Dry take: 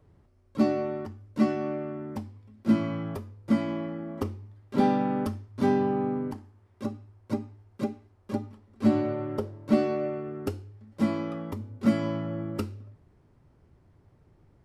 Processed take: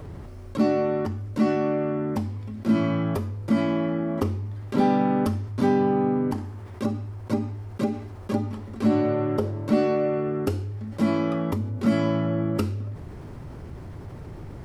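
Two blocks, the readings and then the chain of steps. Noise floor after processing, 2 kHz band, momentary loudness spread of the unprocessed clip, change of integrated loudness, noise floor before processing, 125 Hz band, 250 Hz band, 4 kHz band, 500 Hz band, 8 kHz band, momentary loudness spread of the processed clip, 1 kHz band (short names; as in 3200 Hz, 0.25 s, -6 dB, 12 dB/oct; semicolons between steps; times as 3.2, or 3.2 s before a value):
-40 dBFS, +5.0 dB, 14 LU, +4.0 dB, -62 dBFS, +7.5 dB, +4.0 dB, +5.0 dB, +5.0 dB, n/a, 17 LU, +4.5 dB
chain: fast leveller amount 50%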